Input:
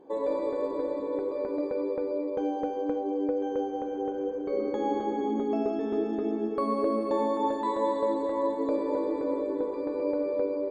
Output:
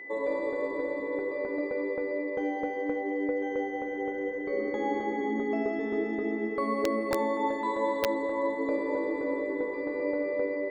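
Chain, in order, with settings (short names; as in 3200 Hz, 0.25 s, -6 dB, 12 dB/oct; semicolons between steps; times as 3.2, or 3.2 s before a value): wrapped overs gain 16.5 dB; whine 2000 Hz -39 dBFS; gain -1.5 dB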